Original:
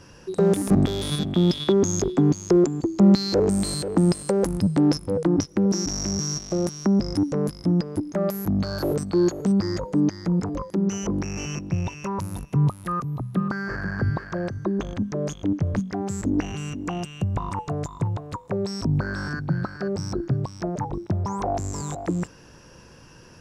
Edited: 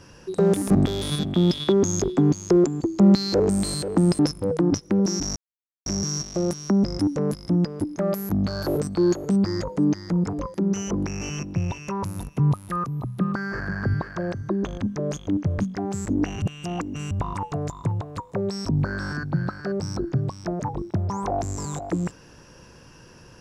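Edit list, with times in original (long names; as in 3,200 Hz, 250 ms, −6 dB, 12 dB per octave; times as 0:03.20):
0:04.19–0:04.85: remove
0:06.02: splice in silence 0.50 s
0:16.58–0:17.27: reverse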